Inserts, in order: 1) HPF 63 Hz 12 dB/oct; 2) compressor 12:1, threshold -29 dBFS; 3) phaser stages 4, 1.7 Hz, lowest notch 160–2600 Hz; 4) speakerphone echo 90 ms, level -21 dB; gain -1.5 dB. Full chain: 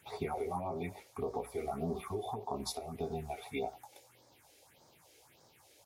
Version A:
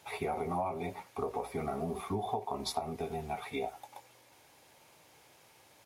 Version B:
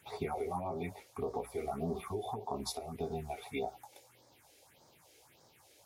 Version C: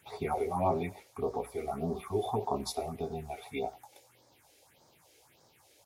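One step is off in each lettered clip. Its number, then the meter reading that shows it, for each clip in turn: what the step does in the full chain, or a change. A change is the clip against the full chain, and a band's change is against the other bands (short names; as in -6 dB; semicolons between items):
3, 1 kHz band +2.5 dB; 4, echo-to-direct -25.5 dB to none; 2, mean gain reduction 3.0 dB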